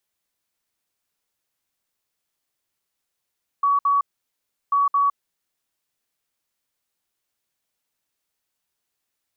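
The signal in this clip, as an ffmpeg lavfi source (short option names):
-f lavfi -i "aevalsrc='0.168*sin(2*PI*1130*t)*clip(min(mod(mod(t,1.09),0.22),0.16-mod(mod(t,1.09),0.22))/0.005,0,1)*lt(mod(t,1.09),0.44)':d=2.18:s=44100"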